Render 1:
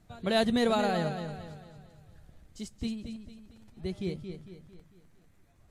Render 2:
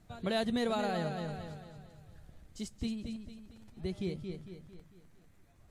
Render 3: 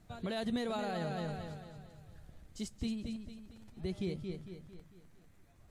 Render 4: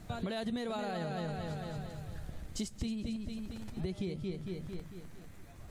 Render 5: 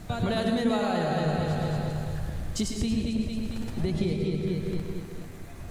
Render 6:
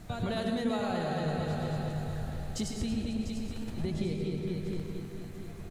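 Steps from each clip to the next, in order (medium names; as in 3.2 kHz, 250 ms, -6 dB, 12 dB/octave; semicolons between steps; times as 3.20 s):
compression 2:1, threshold -33 dBFS, peak gain reduction 7 dB
peak limiter -27 dBFS, peak gain reduction 7.5 dB
compression 6:1, threshold -46 dBFS, peak gain reduction 14 dB; trim +11.5 dB
plate-style reverb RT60 0.76 s, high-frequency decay 0.55×, pre-delay 90 ms, DRR 2 dB; trim +8 dB
feedback delay 696 ms, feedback 44%, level -11.5 dB; trim -5.5 dB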